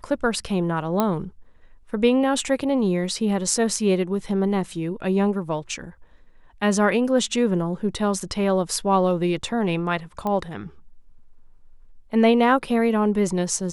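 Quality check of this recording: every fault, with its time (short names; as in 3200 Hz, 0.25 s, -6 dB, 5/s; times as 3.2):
1 pop -7 dBFS
10.27 pop -15 dBFS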